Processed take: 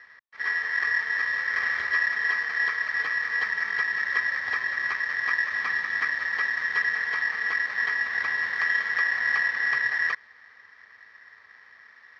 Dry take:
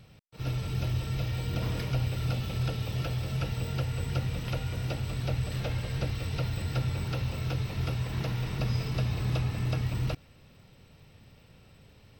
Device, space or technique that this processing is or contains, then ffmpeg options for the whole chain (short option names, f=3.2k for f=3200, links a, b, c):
ring modulator pedal into a guitar cabinet: -af "aeval=exprs='val(0)*sgn(sin(2*PI*1800*n/s))':c=same,highpass=75,equalizer=f=150:t=q:w=4:g=-5,equalizer=f=340:t=q:w=4:g=-6,equalizer=f=1.1k:t=q:w=4:g=9,equalizer=f=1.9k:t=q:w=4:g=6,equalizer=f=2.7k:t=q:w=4:g=-4,lowpass=f=4.2k:w=0.5412,lowpass=f=4.2k:w=1.3066"